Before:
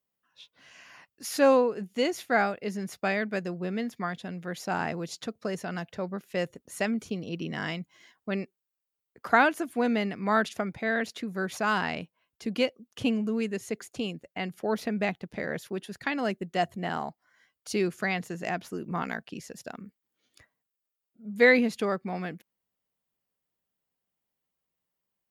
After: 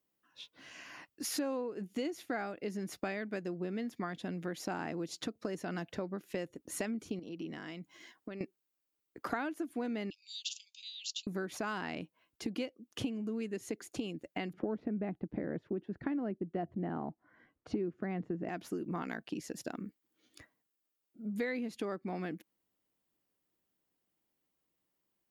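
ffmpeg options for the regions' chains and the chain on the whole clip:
ffmpeg -i in.wav -filter_complex "[0:a]asettb=1/sr,asplit=3[link_01][link_02][link_03];[link_01]atrim=end=7.194[link_04];[link_02]atrim=start=7.19:end=8.41,asetpts=PTS-STARTPTS,afade=type=in:duration=0.004:curve=qsin,afade=type=out:start_time=1.216:duration=0.004:curve=qsin,highpass=frequency=140:poles=1,acompressor=threshold=-43dB:ratio=10:attack=3.2:release=140:knee=1:detection=peak[link_05];[link_03]atrim=start=8.406[link_06];[link_04][link_05]acrossfade=duration=0.004:curve1=hsin:curve2=qsin[link_07];[link_07][link_06]acrossfade=duration=0.004:curve1=qsin:curve2=hsin,asettb=1/sr,asplit=3[link_08][link_09][link_10];[link_08]atrim=end=10.104[link_11];[link_09]atrim=start=10.1:end=11.27,asetpts=PTS-STARTPTS,afade=type=in:duration=0.004:curve=qsin,afade=type=out:start_time=1.166:duration=0.004:curve=qsin,asuperpass=centerf=4500:order=20:qfactor=0.97,highshelf=frequency=3900:gain=7.5[link_12];[link_10]atrim=start=11.266[link_13];[link_11][link_12]acrossfade=duration=0.004:curve1=hsin:curve2=qsin[link_14];[link_14][link_13]acrossfade=duration=0.004:curve1=qsin:curve2=hsin,asettb=1/sr,asplit=3[link_15][link_16][link_17];[link_15]atrim=end=14.534[link_18];[link_16]atrim=start=14.53:end=18.49,asetpts=PTS-STARTPTS,afade=type=in:duration=0.004:curve=qsin,afade=type=out:start_time=3.956:duration=0.004:curve=qsin,lowpass=1700,lowshelf=frequency=490:gain=11[link_19];[link_17]atrim=start=18.486[link_20];[link_18][link_19]acrossfade=duration=0.004:curve1=hsin:curve2=qsin[link_21];[link_21][link_20]acrossfade=duration=0.004:curve1=qsin:curve2=hsin,equalizer=frequency=310:width=2.8:gain=10.5,acompressor=threshold=-36dB:ratio=6,volume=1dB" out.wav

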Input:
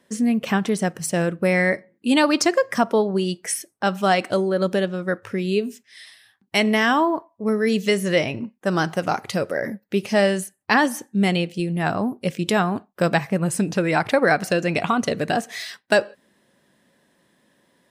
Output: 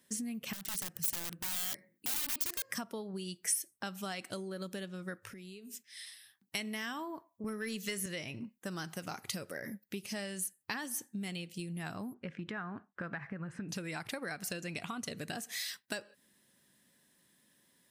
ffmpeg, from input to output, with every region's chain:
ffmpeg -i in.wav -filter_complex "[0:a]asettb=1/sr,asplit=3[link_01][link_02][link_03];[link_01]atrim=end=0.534[link_04];[link_02]atrim=start=0.53:end=2.7,asetpts=PTS-STARTPTS,afade=type=in:duration=0.004:curve=qsin,afade=type=out:start_time=2.166:duration=0.004:curve=qsin,highshelf=frequency=11000:gain=5.5,acompressor=threshold=-37dB:ratio=2:attack=3.2:release=140:knee=1:detection=peak,aeval=exprs='(mod(26.6*val(0)+1,2)-1)/26.6':channel_layout=same[link_05];[link_03]atrim=start=2.696[link_06];[link_04][link_05]acrossfade=duration=0.004:curve1=hsin:curve2=qsin[link_07];[link_07][link_06]acrossfade=duration=0.004:curve1=qsin:curve2=hsin,asettb=1/sr,asplit=3[link_08][link_09][link_10];[link_08]atrim=end=5.304[link_11];[link_09]atrim=start=5.3:end=6.55,asetpts=PTS-STARTPTS,afade=type=in:duration=0.004:curve=qsin,afade=type=out:start_time=1.246:duration=0.004:curve=qsin,highpass=120,acompressor=threshold=-36dB:ratio=8:attack=3.2:release=140:knee=1:detection=peak[link_12];[link_10]atrim=start=6.546[link_13];[link_11][link_12]acrossfade=duration=0.004:curve1=hsin:curve2=qsin[link_14];[link_14][link_13]acrossfade=duration=0.004:curve1=qsin:curve2=hsin,asettb=1/sr,asplit=3[link_15][link_16][link_17];[link_15]atrim=end=7.444[link_18];[link_16]atrim=start=7.44:end=8.06,asetpts=PTS-STARTPTS,afade=type=in:duration=0.004:curve=qsin,afade=type=out:start_time=0.616:duration=0.004:curve=qsin,highpass=170,equalizer=frequency=1500:width_type=o:width=0.79:gain=5.5,acontrast=79[link_19];[link_17]atrim=start=8.056[link_20];[link_18][link_19]acrossfade=duration=0.004:curve1=hsin:curve2=qsin[link_21];[link_21][link_20]acrossfade=duration=0.004:curve1=qsin:curve2=hsin,asettb=1/sr,asplit=3[link_22][link_23][link_24];[link_22]atrim=end=12.144[link_25];[link_23]atrim=start=12.14:end=13.69,asetpts=PTS-STARTPTS,afade=type=in:duration=0.004:curve=qsin,afade=type=out:start_time=1.546:duration=0.004:curve=qsin,acompressor=threshold=-21dB:ratio=3:attack=3.2:release=140:knee=1:detection=peak,lowpass=frequency=1600:width_type=q:width=2.6[link_26];[link_24]atrim=start=13.686[link_27];[link_25][link_26]acrossfade=duration=0.004:curve1=hsin:curve2=qsin[link_28];[link_28][link_27]acrossfade=duration=0.004:curve1=qsin:curve2=hsin,equalizer=frequency=610:width_type=o:width=1.9:gain=-7.5,acompressor=threshold=-30dB:ratio=6,aemphasis=mode=production:type=50kf,volume=-8dB" out.wav

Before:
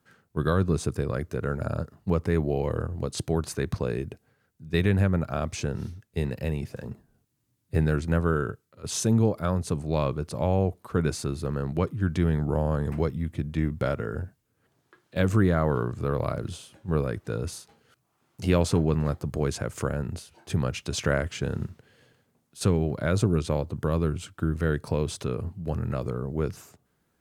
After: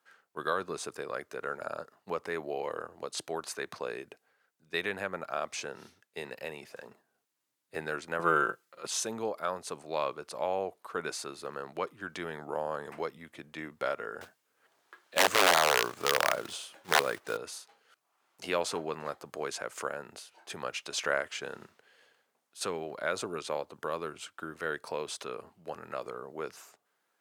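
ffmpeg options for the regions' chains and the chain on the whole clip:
ffmpeg -i in.wav -filter_complex "[0:a]asettb=1/sr,asplit=3[link_01][link_02][link_03];[link_01]atrim=end=8.194[link_04];[link_02]atrim=start=8.19:end=8.87,asetpts=PTS-STARTPTS,afade=type=in:duration=0.004:curve=qsin,afade=type=out:start_time=0.676:duration=0.004:curve=qsin,aecho=1:1:5.8:0.54,atrim=end_sample=29988,acontrast=52[link_05];[link_03]atrim=start=8.866[link_06];[link_04][link_05]acrossfade=duration=0.004:curve1=hsin:curve2=qsin[link_07];[link_07][link_06]acrossfade=duration=0.004:curve1=qsin:curve2=hsin,asettb=1/sr,asplit=3[link_08][link_09][link_10];[link_08]atrim=end=14.214[link_11];[link_09]atrim=start=14.21:end=17.37,asetpts=PTS-STARTPTS,afade=type=in:duration=0.004:curve=qsin,afade=type=out:start_time=3.156:duration=0.004:curve=qsin,acontrast=31,aeval=exprs='(mod(3.55*val(0)+1,2)-1)/3.55':channel_layout=same,acrusher=bits=5:mode=log:mix=0:aa=0.000001[link_12];[link_10]atrim=start=17.366[link_13];[link_11][link_12]acrossfade=duration=0.004:curve1=hsin:curve2=qsin[link_14];[link_14][link_13]acrossfade=duration=0.004:curve1=qsin:curve2=hsin,highpass=650,highshelf=frequency=6100:gain=-5" out.wav

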